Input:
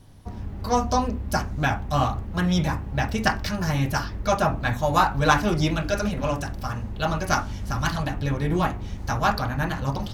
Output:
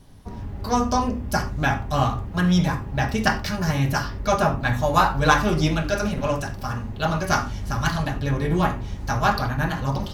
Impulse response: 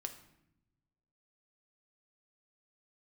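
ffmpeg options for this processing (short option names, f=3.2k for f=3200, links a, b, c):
-filter_complex "[0:a]asettb=1/sr,asplit=3[a][b][c];[a]atrim=end=0.894[d];[b]atrim=start=0.89:end=1.3,asetpts=PTS-STARTPTS,afade=t=in:d=0.004:c=qsin,afade=t=out:st=0.406:d=0.004:c=qsin,bandreject=f=4k:w=12[e];[c]atrim=start=1.296[f];[d][e]acrossfade=d=0.004:c1=hsin:c2=qsin[g];[g][f]acrossfade=d=0.004:c1=qsin:c2=hsin[h];[1:a]atrim=start_sample=2205,atrim=end_sample=4410[i];[h][i]afir=irnorm=-1:irlink=0,volume=4dB"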